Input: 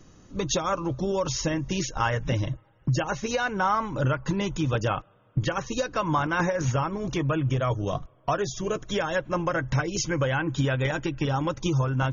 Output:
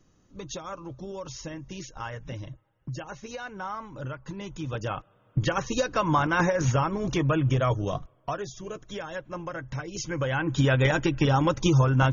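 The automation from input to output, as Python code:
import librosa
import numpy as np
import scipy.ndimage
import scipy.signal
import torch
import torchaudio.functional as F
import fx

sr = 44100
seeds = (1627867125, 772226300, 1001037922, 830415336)

y = fx.gain(x, sr, db=fx.line((4.34, -11.0), (5.53, 1.5), (7.67, 1.5), (8.61, -9.0), (9.8, -9.0), (10.74, 4.0)))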